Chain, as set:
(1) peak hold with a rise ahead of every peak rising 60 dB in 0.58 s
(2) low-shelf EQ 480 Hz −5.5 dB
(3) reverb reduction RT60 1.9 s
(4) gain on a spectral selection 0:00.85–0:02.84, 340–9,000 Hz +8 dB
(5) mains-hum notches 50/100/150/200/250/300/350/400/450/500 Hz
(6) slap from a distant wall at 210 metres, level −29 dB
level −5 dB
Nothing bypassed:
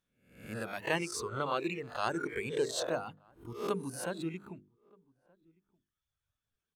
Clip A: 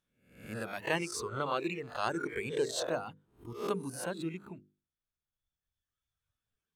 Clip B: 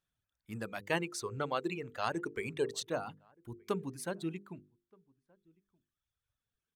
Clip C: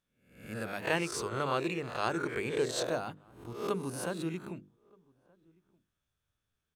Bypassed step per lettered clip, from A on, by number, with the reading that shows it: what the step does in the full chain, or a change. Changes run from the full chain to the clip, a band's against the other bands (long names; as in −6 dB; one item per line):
6, echo-to-direct ratio −33.0 dB to none audible
1, 125 Hz band +2.0 dB
3, change in momentary loudness spread −1 LU